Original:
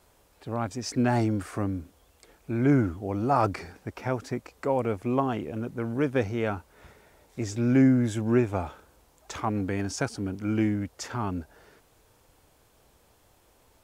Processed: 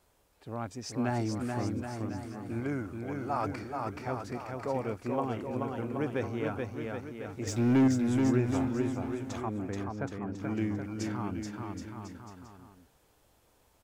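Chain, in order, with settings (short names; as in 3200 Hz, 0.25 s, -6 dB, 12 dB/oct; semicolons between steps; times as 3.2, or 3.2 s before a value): 2.6–3.47 low shelf 420 Hz -8 dB; 7.47–7.88 sample leveller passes 2; 9.41–10.38 Bessel low-pass 1500 Hz, order 2; on a send: bouncing-ball echo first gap 0.43 s, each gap 0.8×, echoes 5; on the sum: gain -7 dB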